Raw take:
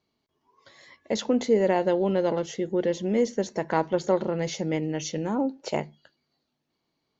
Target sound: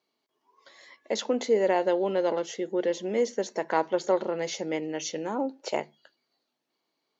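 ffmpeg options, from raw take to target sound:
ffmpeg -i in.wav -af "highpass=340" out.wav

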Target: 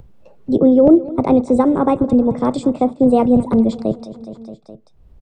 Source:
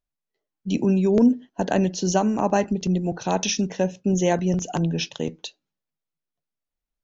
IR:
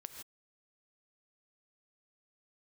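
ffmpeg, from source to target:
-filter_complex "[0:a]asetrate=59535,aresample=44100,bass=frequency=250:gain=7,treble=frequency=4000:gain=-15,asplit=2[link_01][link_02];[link_02]aecho=0:1:209|418|627|836:0.126|0.0667|0.0354|0.0187[link_03];[link_01][link_03]amix=inputs=2:normalize=0,acompressor=mode=upward:threshold=-27dB:ratio=2.5,equalizer=frequency=125:width_type=o:width=1:gain=10,equalizer=frequency=500:width_type=o:width=1:gain=11,equalizer=frequency=2000:width_type=o:width=1:gain=-4,acrossover=split=210|1900[link_04][link_05][link_06];[link_04]acontrast=75[link_07];[link_07][link_05][link_06]amix=inputs=3:normalize=0,volume=-1.5dB"

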